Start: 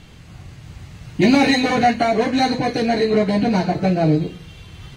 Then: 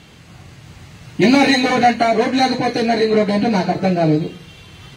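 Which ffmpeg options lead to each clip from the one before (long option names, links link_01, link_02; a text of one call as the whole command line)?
ffmpeg -i in.wav -af "highpass=frequency=170:poles=1,volume=3dB" out.wav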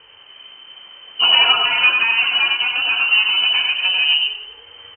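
ffmpeg -i in.wav -filter_complex "[0:a]asplit=2[link_01][link_02];[link_02]aecho=0:1:94|265:0.631|0.126[link_03];[link_01][link_03]amix=inputs=2:normalize=0,lowpass=frequency=2700:width_type=q:width=0.5098,lowpass=frequency=2700:width_type=q:width=0.6013,lowpass=frequency=2700:width_type=q:width=0.9,lowpass=frequency=2700:width_type=q:width=2.563,afreqshift=-3200,volume=-2.5dB" out.wav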